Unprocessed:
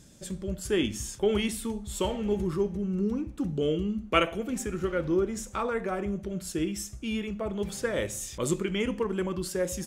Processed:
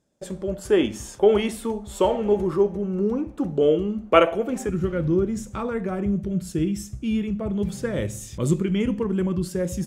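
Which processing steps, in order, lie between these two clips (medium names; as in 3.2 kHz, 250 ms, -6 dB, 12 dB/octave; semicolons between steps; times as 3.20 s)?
gate with hold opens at -40 dBFS; peaking EQ 650 Hz +14 dB 2.5 oct, from 4.69 s 130 Hz; trim -2 dB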